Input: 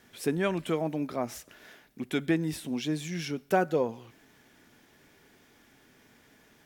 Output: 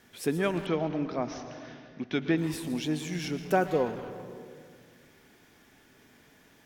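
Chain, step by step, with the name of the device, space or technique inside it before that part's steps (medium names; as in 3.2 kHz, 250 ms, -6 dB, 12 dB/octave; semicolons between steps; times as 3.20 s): saturated reverb return (on a send at -5.5 dB: reverberation RT60 1.7 s, pre-delay 107 ms + saturation -30.5 dBFS, distortion -8 dB); 0.66–2.38 s: on the sum: steep low-pass 6.2 kHz 96 dB/octave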